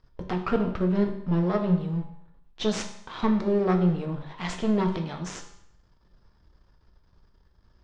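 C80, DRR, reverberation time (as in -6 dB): 11.0 dB, 3.0 dB, 0.70 s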